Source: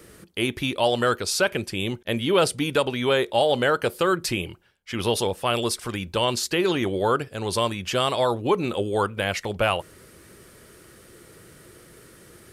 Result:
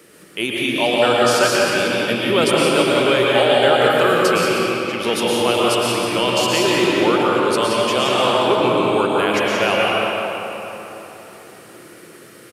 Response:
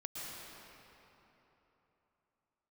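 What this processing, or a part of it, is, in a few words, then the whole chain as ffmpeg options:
PA in a hall: -filter_complex "[0:a]highpass=190,equalizer=frequency=2600:width_type=o:width=0.52:gain=3.5,aecho=1:1:176:0.422[link_01];[1:a]atrim=start_sample=2205[link_02];[link_01][link_02]afir=irnorm=-1:irlink=0,volume=6.5dB"

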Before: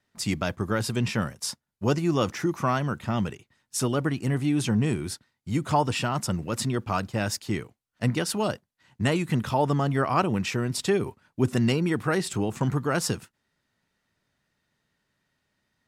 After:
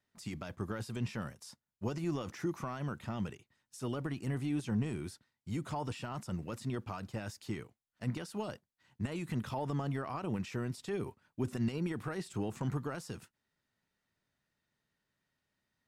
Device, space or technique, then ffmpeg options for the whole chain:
de-esser from a sidechain: -filter_complex "[0:a]asplit=2[link_01][link_02];[link_02]highpass=frequency=6000:poles=1,apad=whole_len=700283[link_03];[link_01][link_03]sidechaincompress=threshold=-41dB:ratio=5:attack=0.98:release=46,volume=-8.5dB"

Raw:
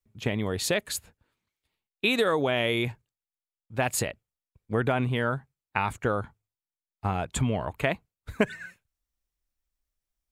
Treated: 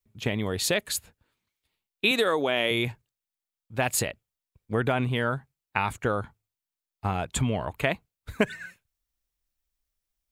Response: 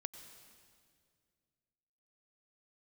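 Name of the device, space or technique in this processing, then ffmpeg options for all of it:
presence and air boost: -filter_complex "[0:a]asettb=1/sr,asplit=3[link_01][link_02][link_03];[link_01]atrim=end=2.114[link_04];[link_02]atrim=start=2.11:end=2.71,asetpts=PTS-STARTPTS,afade=type=in:duration=0.004:curve=qsin,afade=type=out:start_time=0.596:duration=0.004:curve=qsin,highpass=210[link_05];[link_03]atrim=start=2.706[link_06];[link_04][link_05]acrossfade=duration=0.004:curve1=hsin:curve2=qsin[link_07];[link_07][link_06]acrossfade=duration=0.004:curve1=qsin:curve2=hsin,equalizer=frequency=3600:width_type=o:width=1.5:gain=2.5,highshelf=frequency=11000:gain=6"

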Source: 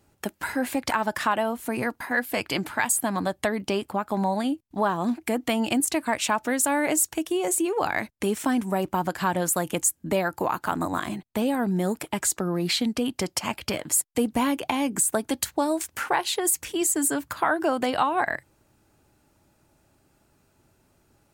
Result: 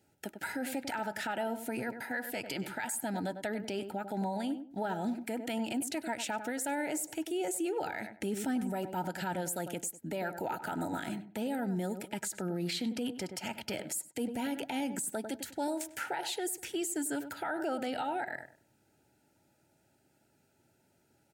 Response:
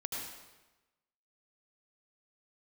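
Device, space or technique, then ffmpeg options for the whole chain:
PA system with an anti-feedback notch: -filter_complex "[0:a]asettb=1/sr,asplit=3[link_01][link_02][link_03];[link_01]atrim=end=8.124[link_04];[link_02]atrim=start=8.12:end=8.65,asetpts=PTS-STARTPTS,afade=type=in:duration=0.004:curve=qsin,afade=type=out:start_time=0.526:duration=0.004:curve=qsin,lowshelf=frequency=230:gain=7.5[link_05];[link_03]atrim=start=8.646[link_06];[link_04][link_05]acrossfade=duration=0.004:curve1=hsin:curve2=qsin[link_07];[link_07][link_06]acrossfade=duration=0.004:curve1=qsin:curve2=hsin,highpass=110,asuperstop=centerf=1100:order=20:qfactor=3.8,asplit=2[link_08][link_09];[link_09]adelay=98,lowpass=frequency=1300:poles=1,volume=-11.5dB,asplit=2[link_10][link_11];[link_11]adelay=98,lowpass=frequency=1300:poles=1,volume=0.26,asplit=2[link_12][link_13];[link_13]adelay=98,lowpass=frequency=1300:poles=1,volume=0.26[link_14];[link_08][link_10][link_12][link_14]amix=inputs=4:normalize=0,alimiter=limit=-20.5dB:level=0:latency=1:release=51,volume=-6dB"

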